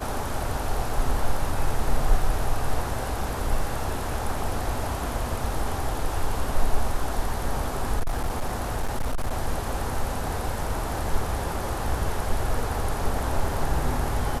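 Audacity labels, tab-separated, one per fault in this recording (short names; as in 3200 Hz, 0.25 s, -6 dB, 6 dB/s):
7.990000	9.330000	clipped -21 dBFS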